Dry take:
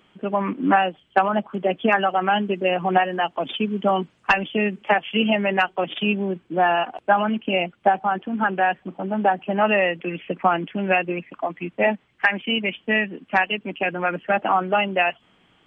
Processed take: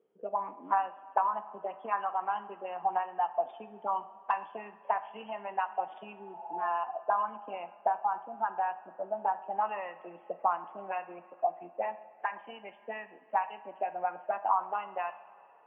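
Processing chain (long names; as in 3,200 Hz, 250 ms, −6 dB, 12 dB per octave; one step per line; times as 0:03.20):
envelope filter 450–1,000 Hz, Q 8.5, up, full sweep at −16.5 dBFS
healed spectral selection 0:06.14–0:06.65, 500–1,000 Hz both
coupled-rooms reverb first 0.52 s, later 3.1 s, from −14 dB, DRR 10 dB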